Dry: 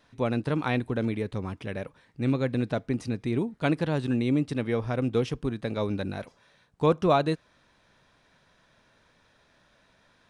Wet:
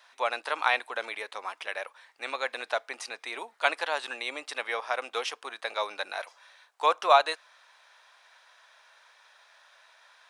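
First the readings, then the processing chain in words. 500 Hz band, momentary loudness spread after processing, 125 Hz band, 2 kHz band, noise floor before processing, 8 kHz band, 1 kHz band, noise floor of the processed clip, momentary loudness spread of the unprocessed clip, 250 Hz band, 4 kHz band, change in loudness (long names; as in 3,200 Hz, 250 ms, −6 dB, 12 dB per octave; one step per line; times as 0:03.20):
−4.0 dB, 13 LU, below −40 dB, +7.0 dB, −65 dBFS, can't be measured, +5.5 dB, −65 dBFS, 10 LU, −25.5 dB, +7.0 dB, −2.0 dB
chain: high-pass filter 730 Hz 24 dB per octave
level +7 dB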